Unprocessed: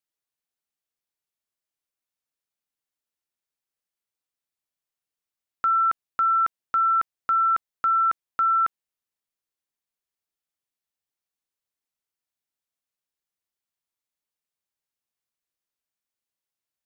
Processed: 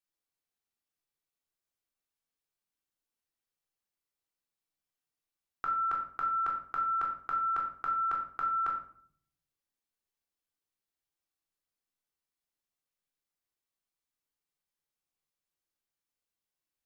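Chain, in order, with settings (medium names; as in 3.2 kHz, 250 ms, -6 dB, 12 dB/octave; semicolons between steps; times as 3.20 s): simulated room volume 790 m³, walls furnished, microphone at 3.6 m; trim -6.5 dB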